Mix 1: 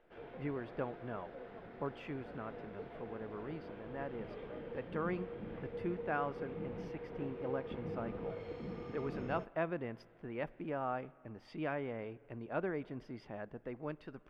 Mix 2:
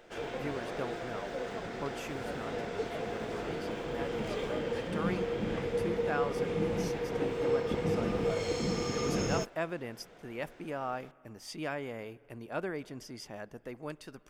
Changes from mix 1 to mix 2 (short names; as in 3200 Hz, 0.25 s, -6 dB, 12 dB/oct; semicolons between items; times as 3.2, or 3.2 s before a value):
background +11.0 dB; master: remove air absorption 410 m